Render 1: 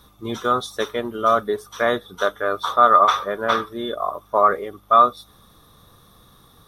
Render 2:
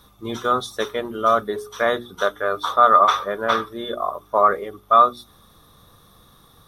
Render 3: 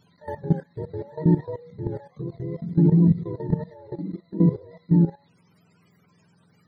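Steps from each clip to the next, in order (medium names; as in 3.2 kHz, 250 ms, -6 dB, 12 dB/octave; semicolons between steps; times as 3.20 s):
hum notches 60/120/180/240/300/360/420 Hz
spectrum inverted on a logarithmic axis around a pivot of 450 Hz; level held to a coarse grid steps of 15 dB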